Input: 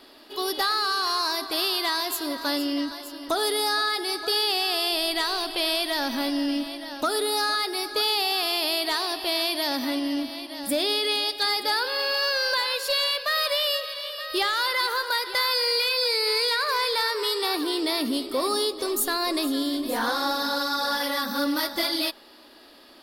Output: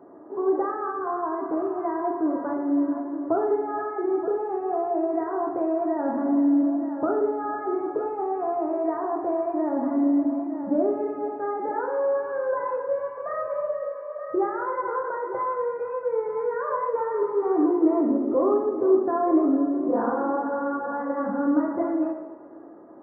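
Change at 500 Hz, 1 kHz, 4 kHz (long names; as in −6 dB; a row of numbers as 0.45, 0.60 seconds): +5.0 dB, 0.0 dB, below −40 dB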